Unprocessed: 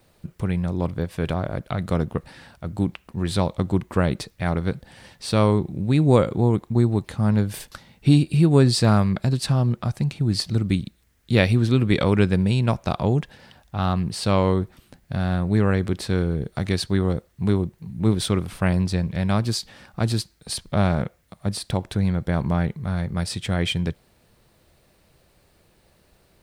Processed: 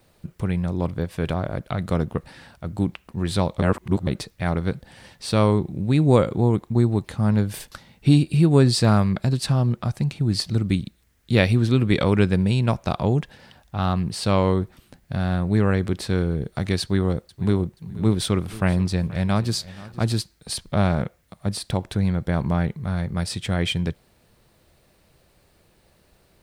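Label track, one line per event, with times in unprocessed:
3.620000	4.070000	reverse
16.810000	20.040000	feedback echo 0.479 s, feedback 27%, level -19 dB

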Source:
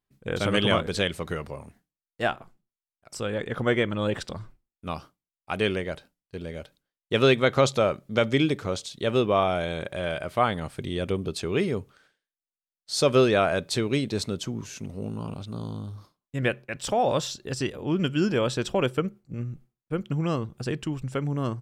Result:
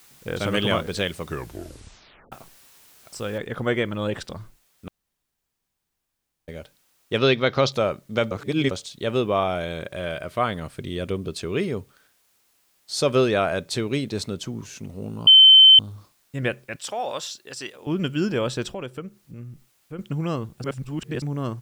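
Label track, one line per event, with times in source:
1.230000	1.230000	tape stop 1.09 s
3.380000	3.380000	noise floor step -53 dB -65 dB
4.880000	6.480000	room tone
7.180000	7.720000	resonant high shelf 6400 Hz -8 dB, Q 3
8.310000	8.710000	reverse
9.550000	11.650000	notch 820 Hz, Q 6.8
15.270000	15.790000	bleep 3080 Hz -7 dBFS
16.760000	17.870000	HPF 1000 Hz 6 dB/oct
18.710000	19.990000	compressor 1.5:1, threshold -44 dBFS
20.640000	21.220000	reverse

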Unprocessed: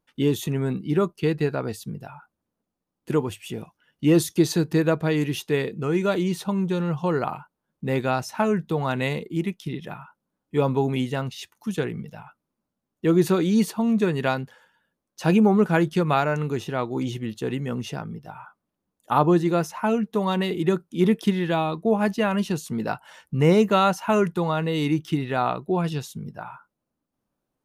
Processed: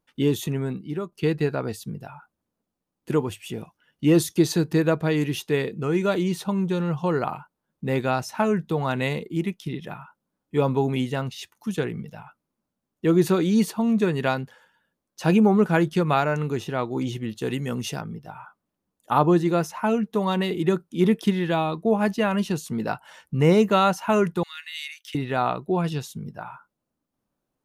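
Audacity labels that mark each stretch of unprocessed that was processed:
0.430000	1.120000	fade out, to -12.5 dB
17.410000	18.010000	high shelf 3900 Hz +10 dB
24.430000	25.150000	steep high-pass 1700 Hz

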